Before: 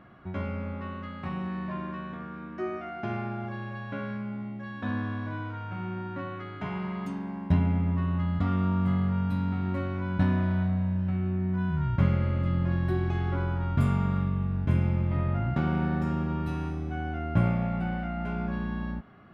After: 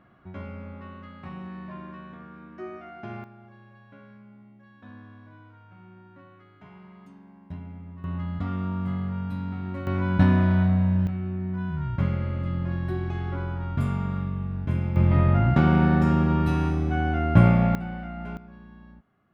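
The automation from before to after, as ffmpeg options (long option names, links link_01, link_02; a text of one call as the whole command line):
ffmpeg -i in.wav -af "asetnsamples=nb_out_samples=441:pad=0,asendcmd='3.24 volume volume -15dB;8.04 volume volume -3dB;9.87 volume volume 6dB;11.07 volume volume -1.5dB;14.96 volume volume 8dB;17.75 volume volume -3dB;18.37 volume volume -15.5dB',volume=-5dB" out.wav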